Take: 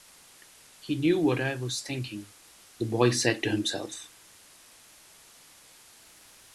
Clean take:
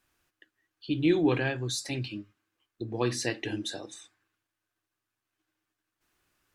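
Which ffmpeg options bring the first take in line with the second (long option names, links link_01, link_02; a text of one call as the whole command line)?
ffmpeg -i in.wav -af "afwtdn=0.0025,asetnsamples=nb_out_samples=441:pad=0,asendcmd='2.22 volume volume -6dB',volume=0dB" out.wav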